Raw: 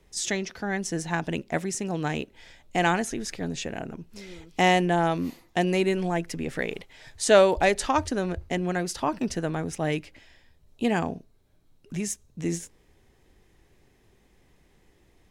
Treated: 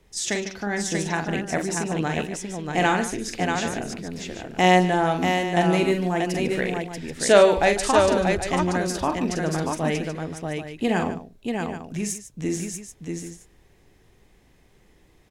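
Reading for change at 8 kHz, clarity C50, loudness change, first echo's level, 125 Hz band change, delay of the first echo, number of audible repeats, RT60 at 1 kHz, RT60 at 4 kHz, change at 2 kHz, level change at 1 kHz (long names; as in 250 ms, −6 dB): +3.5 dB, no reverb audible, +3.0 dB, −7.0 dB, +4.0 dB, 44 ms, 4, no reverb audible, no reverb audible, +3.5 dB, +4.0 dB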